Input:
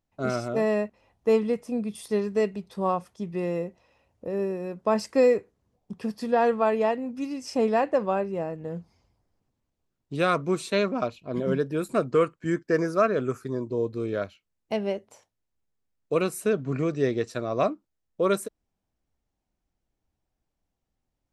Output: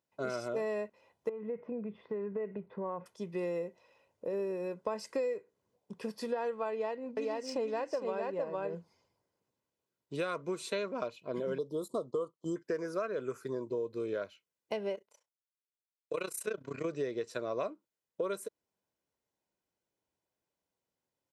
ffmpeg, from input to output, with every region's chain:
ffmpeg -i in.wav -filter_complex "[0:a]asettb=1/sr,asplit=3[link_01][link_02][link_03];[link_01]atrim=end=1.294[link_04];[link_02]atrim=start=1.29:end=3.06,asetpts=PTS-STARTPTS,afade=type=in:duration=0.004:curve=qsin,afade=type=out:start_time=1.766:duration=0.004:curve=qsin,lowpass=frequency=2100:width=0.5412,lowpass=frequency=2100:width=1.3066,lowshelf=frequency=400:gain=5,acompressor=threshold=-27dB:ratio=16:attack=3.2:release=140:knee=1:detection=peak[link_05];[link_03]atrim=start=3.056[link_06];[link_04][link_05]acrossfade=duration=0.004:curve1=hsin:curve2=qsin[link_07];[link_07][link_06]acrossfade=duration=0.004:curve1=qsin:curve2=hsin,asettb=1/sr,asplit=3[link_08][link_09][link_10];[link_08]atrim=end=6.714[link_11];[link_09]atrim=start=6.71:end=8.75,asetpts=PTS-STARTPTS,afade=type=in:duration=0.004:curve=qsin,afade=type=out:start_time=2.036:duration=0.004:curve=qsin,aecho=1:1:458:0.668,atrim=end_sample=89964,adynamicsmooth=sensitivity=5.5:basefreq=6600,equalizer=frequency=4400:width=4.3:gain=3.5[link_12];[link_10]atrim=start=8.746[link_13];[link_11][link_12]acrossfade=duration=0.004:curve1=hsin:curve2=qsin[link_14];[link_14][link_13]acrossfade=duration=0.004:curve1=qsin:curve2=hsin,asettb=1/sr,asplit=3[link_15][link_16][link_17];[link_15]atrim=end=11.584[link_18];[link_16]atrim=start=11.58:end=12.56,asetpts=PTS-STARTPTS,afade=type=in:duration=0.004:curve=qsin,afade=type=out:start_time=0.976:duration=0.004:curve=qsin,agate=range=-11dB:threshold=-41dB:ratio=16:release=100:detection=peak,asuperstop=centerf=2000:order=20:qfactor=1.1[link_19];[link_17]atrim=start=12.556[link_20];[link_18][link_19]acrossfade=duration=0.004:curve1=hsin:curve2=qsin[link_21];[link_21][link_20]acrossfade=duration=0.004:curve1=qsin:curve2=hsin,asettb=1/sr,asplit=3[link_22][link_23][link_24];[link_22]atrim=end=14.954[link_25];[link_23]atrim=start=14.95:end=16.85,asetpts=PTS-STARTPTS,afade=type=in:duration=0.004:curve=qsin,afade=type=out:start_time=1.896:duration=0.004:curve=qsin,agate=range=-12dB:threshold=-51dB:ratio=16:release=100:detection=peak,tiltshelf=frequency=720:gain=-4,tremolo=f=30:d=0.889[link_26];[link_24]atrim=start=16.846[link_27];[link_25][link_26]acrossfade=duration=0.004:curve1=hsin:curve2=qsin[link_28];[link_28][link_27]acrossfade=duration=0.004:curve1=qsin:curve2=hsin,highpass=200,aecho=1:1:2:0.4,acompressor=threshold=-29dB:ratio=6,volume=-3dB" out.wav

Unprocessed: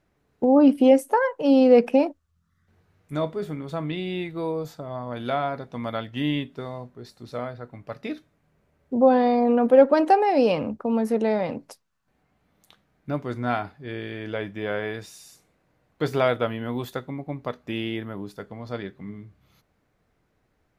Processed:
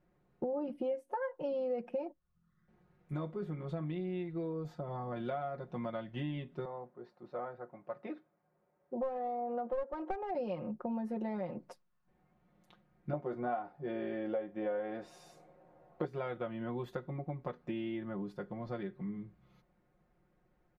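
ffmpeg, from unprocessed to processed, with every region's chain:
ffmpeg -i in.wav -filter_complex "[0:a]asettb=1/sr,asplit=3[link_01][link_02][link_03];[link_01]atrim=end=6.654[link_04];[link_02]atrim=start=6.65:end=10.35,asetpts=PTS-STARTPTS,afade=type=in:duration=0.004:curve=qsin,afade=type=out:start_time=3.696:duration=0.004:curve=qsin,bandpass=frequency=810:width_type=q:width=0.8,aeval=exprs='clip(val(0),-1,0.112)':channel_layout=same[link_05];[link_03]atrim=start=10.346[link_06];[link_04][link_05]acrossfade=duration=0.004:curve1=hsin:curve2=qsin[link_07];[link_07][link_06]acrossfade=duration=0.004:curve1=qsin:curve2=hsin,asettb=1/sr,asplit=3[link_08][link_09][link_10];[link_08]atrim=end=13.134[link_11];[link_09]atrim=start=13.13:end=16.05,asetpts=PTS-STARTPTS,afade=type=in:duration=0.004:curve=qsin,afade=type=out:start_time=2.916:duration=0.004:curve=qsin,equalizer=frequency=630:width=0.81:gain=14,asplit=2[link_12][link_13];[link_13]adelay=13,volume=-6.5dB[link_14];[link_12][link_14]amix=inputs=2:normalize=0,atrim=end_sample=128772[link_15];[link_10]atrim=start=16.046[link_16];[link_11][link_15]acrossfade=duration=0.004:curve1=hsin:curve2=qsin[link_17];[link_17][link_16]acrossfade=duration=0.004:curve1=qsin:curve2=hsin,lowpass=frequency=1200:poles=1,aecho=1:1:5.6:0.87,acompressor=threshold=-31dB:ratio=5,volume=-4.5dB" out.wav

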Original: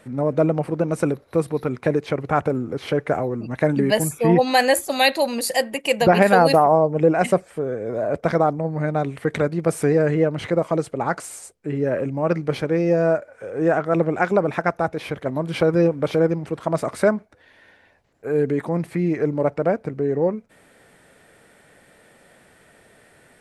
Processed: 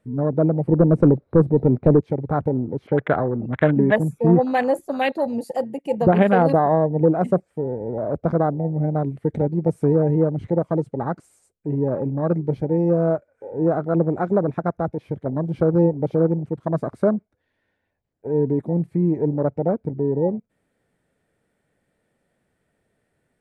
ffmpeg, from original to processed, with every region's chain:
ffmpeg -i in.wav -filter_complex "[0:a]asettb=1/sr,asplit=3[link_01][link_02][link_03];[link_01]atrim=end=0.674[link_04];[link_02]atrim=start=0.67:end=2.01,asetpts=PTS-STARTPTS,afade=type=in:duration=0.004:curve=qsin,afade=type=out:start_time=1.336:duration=0.004:curve=qsin,lowpass=frequency=1500:poles=1,aeval=exprs='0.422*sin(PI/2*1.58*val(0)/0.422)':channel_layout=same[link_05];[link_03]atrim=start=2.006[link_06];[link_04][link_05]acrossfade=duration=0.004:curve1=hsin:curve2=qsin[link_07];[link_07][link_06]acrossfade=duration=0.004:curve1=qsin:curve2=hsin,asettb=1/sr,asplit=3[link_08][link_09][link_10];[link_08]atrim=end=2.874[link_11];[link_09]atrim=start=2.87:end=3.96,asetpts=PTS-STARTPTS,afade=type=in:duration=0.004:curve=qsin,afade=type=out:start_time=1.086:duration=0.004:curve=qsin,lowpass=2200,equalizer=frequency=1500:width_type=o:width=1.8:gain=11.5[link_12];[link_10]atrim=start=3.956[link_13];[link_11][link_12]acrossfade=duration=0.004:curve1=hsin:curve2=qsin[link_14];[link_14][link_13]acrossfade=duration=0.004:curve1=qsin:curve2=hsin,lowshelf=frequency=430:gain=10.5,afwtdn=0.112,volume=-6dB" out.wav

